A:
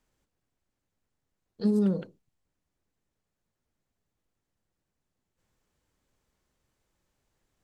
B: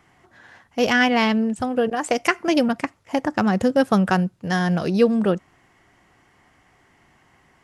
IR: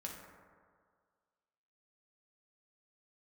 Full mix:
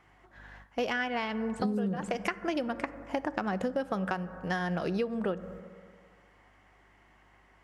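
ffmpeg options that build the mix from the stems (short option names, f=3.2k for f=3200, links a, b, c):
-filter_complex "[0:a]lowshelf=f=470:g=4,aeval=exprs='val(0)+0.00158*(sin(2*PI*50*n/s)+sin(2*PI*2*50*n/s)/2+sin(2*PI*3*50*n/s)/3+sin(2*PI*4*50*n/s)/4+sin(2*PI*5*50*n/s)/5)':c=same,volume=2dB,asplit=2[a][b];[b]volume=-11dB[c];[1:a]bass=f=250:g=-9,treble=f=4k:g=-8,volume=-5dB,asplit=3[d][e][f];[e]volume=-9.5dB[g];[f]apad=whole_len=336656[h];[a][h]sidechaingate=range=-33dB:threshold=-56dB:ratio=16:detection=peak[i];[2:a]atrim=start_sample=2205[j];[c][g]amix=inputs=2:normalize=0[k];[k][j]afir=irnorm=-1:irlink=0[l];[i][d][l]amix=inputs=3:normalize=0,acompressor=threshold=-27dB:ratio=16"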